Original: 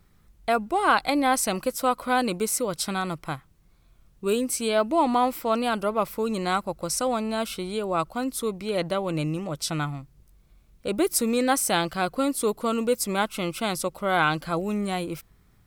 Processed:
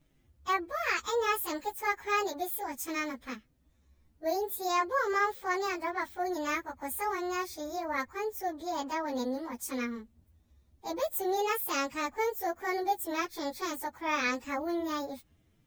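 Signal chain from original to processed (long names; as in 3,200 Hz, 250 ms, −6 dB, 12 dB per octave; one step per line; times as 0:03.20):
phase-vocoder pitch shift without resampling +8.5 semitones
level −4.5 dB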